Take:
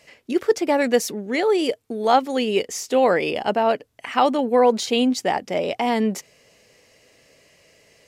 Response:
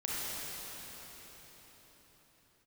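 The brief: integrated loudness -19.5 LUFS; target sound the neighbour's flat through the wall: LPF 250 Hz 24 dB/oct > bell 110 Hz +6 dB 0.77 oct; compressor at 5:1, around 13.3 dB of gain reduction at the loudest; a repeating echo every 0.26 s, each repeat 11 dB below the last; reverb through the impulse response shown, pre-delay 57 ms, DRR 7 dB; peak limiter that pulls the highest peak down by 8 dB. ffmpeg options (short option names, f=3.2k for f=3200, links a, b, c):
-filter_complex "[0:a]acompressor=threshold=-27dB:ratio=5,alimiter=limit=-22dB:level=0:latency=1,aecho=1:1:260|520|780:0.282|0.0789|0.0221,asplit=2[a][b];[1:a]atrim=start_sample=2205,adelay=57[c];[b][c]afir=irnorm=-1:irlink=0,volume=-13dB[d];[a][d]amix=inputs=2:normalize=0,lowpass=f=250:w=0.5412,lowpass=f=250:w=1.3066,equalizer=f=110:t=o:w=0.77:g=6,volume=20dB"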